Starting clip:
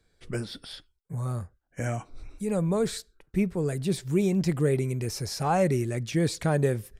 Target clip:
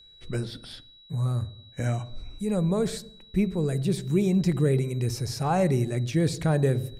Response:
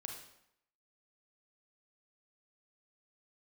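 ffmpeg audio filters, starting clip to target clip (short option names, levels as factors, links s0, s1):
-filter_complex "[0:a]aeval=exprs='val(0)+0.00355*sin(2*PI*3900*n/s)':c=same,asplit=2[s0][s1];[s1]tiltshelf=f=970:g=7.5[s2];[1:a]atrim=start_sample=2205,lowshelf=f=230:g=9[s3];[s2][s3]afir=irnorm=-1:irlink=0,volume=0.299[s4];[s0][s4]amix=inputs=2:normalize=0,volume=0.794"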